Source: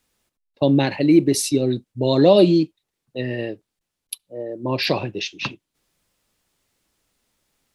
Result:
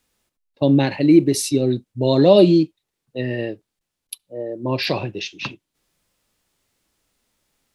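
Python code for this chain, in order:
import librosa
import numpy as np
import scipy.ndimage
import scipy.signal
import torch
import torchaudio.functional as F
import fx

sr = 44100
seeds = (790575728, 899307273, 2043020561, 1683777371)

y = fx.hpss(x, sr, part='harmonic', gain_db=4)
y = y * librosa.db_to_amplitude(-2.0)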